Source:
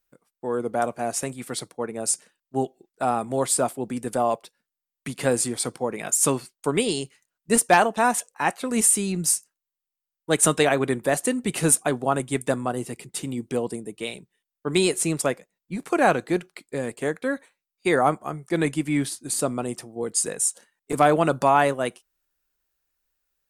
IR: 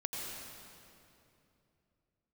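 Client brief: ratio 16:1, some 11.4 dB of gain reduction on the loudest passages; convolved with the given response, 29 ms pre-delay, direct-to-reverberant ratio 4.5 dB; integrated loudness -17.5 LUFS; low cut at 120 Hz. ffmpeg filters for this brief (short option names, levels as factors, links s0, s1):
-filter_complex "[0:a]highpass=120,acompressor=threshold=0.0631:ratio=16,asplit=2[s0][s1];[1:a]atrim=start_sample=2205,adelay=29[s2];[s1][s2]afir=irnorm=-1:irlink=0,volume=0.473[s3];[s0][s3]amix=inputs=2:normalize=0,volume=3.98"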